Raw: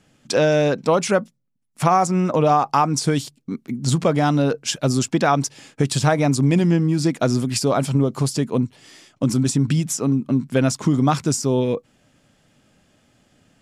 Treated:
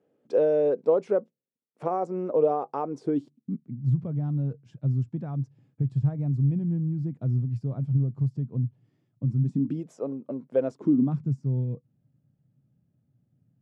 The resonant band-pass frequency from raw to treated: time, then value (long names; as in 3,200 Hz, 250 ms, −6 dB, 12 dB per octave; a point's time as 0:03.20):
resonant band-pass, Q 3.5
0:02.96 450 Hz
0:03.81 120 Hz
0:09.37 120 Hz
0:09.91 540 Hz
0:10.61 540 Hz
0:11.29 130 Hz